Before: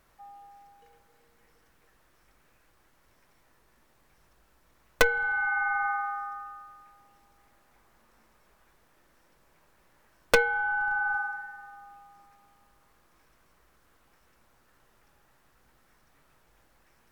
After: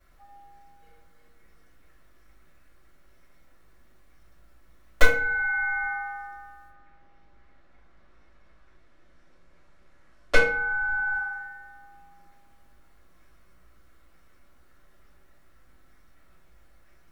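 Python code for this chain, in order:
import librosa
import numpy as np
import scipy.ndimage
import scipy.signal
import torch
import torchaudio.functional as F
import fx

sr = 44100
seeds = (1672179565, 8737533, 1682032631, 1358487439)

y = fx.lowpass(x, sr, hz=fx.line((6.67, 3300.0), (10.34, 8300.0)), slope=12, at=(6.67, 10.34), fade=0.02)
y = fx.room_shoebox(y, sr, seeds[0], volume_m3=33.0, walls='mixed', distance_m=2.3)
y = F.gain(torch.from_numpy(y), -12.0).numpy()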